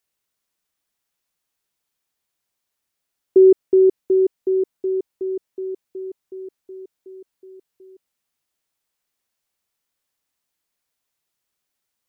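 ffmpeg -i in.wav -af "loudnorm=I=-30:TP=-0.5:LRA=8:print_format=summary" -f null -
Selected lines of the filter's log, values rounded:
Input Integrated:    -18.5 LUFS
Input True Peak:      -5.9 dBTP
Input LRA:            14.9 LU
Input Threshold:     -31.5 LUFS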